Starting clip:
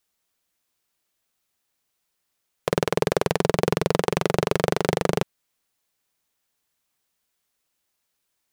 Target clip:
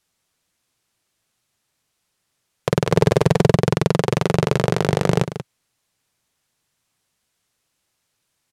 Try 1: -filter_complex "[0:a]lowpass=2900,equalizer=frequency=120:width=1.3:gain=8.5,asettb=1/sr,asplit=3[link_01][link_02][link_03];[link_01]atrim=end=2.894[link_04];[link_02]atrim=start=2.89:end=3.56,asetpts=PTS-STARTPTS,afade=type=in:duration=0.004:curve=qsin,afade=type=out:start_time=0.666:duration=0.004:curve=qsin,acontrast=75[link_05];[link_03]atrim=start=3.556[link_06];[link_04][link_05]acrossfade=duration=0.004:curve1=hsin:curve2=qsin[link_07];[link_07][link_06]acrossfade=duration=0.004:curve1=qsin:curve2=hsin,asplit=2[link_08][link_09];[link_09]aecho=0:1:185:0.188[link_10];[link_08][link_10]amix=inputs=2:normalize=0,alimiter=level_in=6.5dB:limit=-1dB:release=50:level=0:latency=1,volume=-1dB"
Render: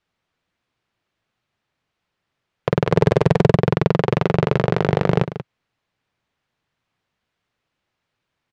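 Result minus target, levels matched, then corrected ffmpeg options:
8,000 Hz band −13.0 dB
-filter_complex "[0:a]lowpass=11000,equalizer=frequency=120:width=1.3:gain=8.5,asettb=1/sr,asplit=3[link_01][link_02][link_03];[link_01]atrim=end=2.894[link_04];[link_02]atrim=start=2.89:end=3.56,asetpts=PTS-STARTPTS,afade=type=in:duration=0.004:curve=qsin,afade=type=out:start_time=0.666:duration=0.004:curve=qsin,acontrast=75[link_05];[link_03]atrim=start=3.556[link_06];[link_04][link_05]acrossfade=duration=0.004:curve1=hsin:curve2=qsin[link_07];[link_07][link_06]acrossfade=duration=0.004:curve1=qsin:curve2=hsin,asplit=2[link_08][link_09];[link_09]aecho=0:1:185:0.188[link_10];[link_08][link_10]amix=inputs=2:normalize=0,alimiter=level_in=6.5dB:limit=-1dB:release=50:level=0:latency=1,volume=-1dB"

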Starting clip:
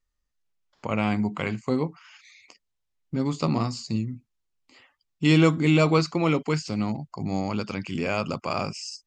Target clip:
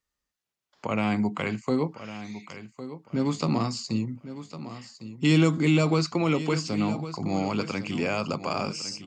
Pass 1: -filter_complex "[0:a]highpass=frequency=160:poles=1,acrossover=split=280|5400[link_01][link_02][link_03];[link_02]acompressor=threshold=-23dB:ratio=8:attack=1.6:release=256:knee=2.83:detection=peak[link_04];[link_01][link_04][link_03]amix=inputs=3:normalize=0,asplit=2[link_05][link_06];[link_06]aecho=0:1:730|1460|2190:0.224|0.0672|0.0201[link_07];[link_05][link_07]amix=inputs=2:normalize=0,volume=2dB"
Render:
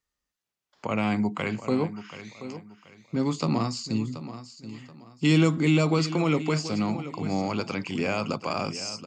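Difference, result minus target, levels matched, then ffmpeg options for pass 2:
echo 376 ms early
-filter_complex "[0:a]highpass=frequency=160:poles=1,acrossover=split=280|5400[link_01][link_02][link_03];[link_02]acompressor=threshold=-23dB:ratio=8:attack=1.6:release=256:knee=2.83:detection=peak[link_04];[link_01][link_04][link_03]amix=inputs=3:normalize=0,asplit=2[link_05][link_06];[link_06]aecho=0:1:1106|2212|3318:0.224|0.0672|0.0201[link_07];[link_05][link_07]amix=inputs=2:normalize=0,volume=2dB"

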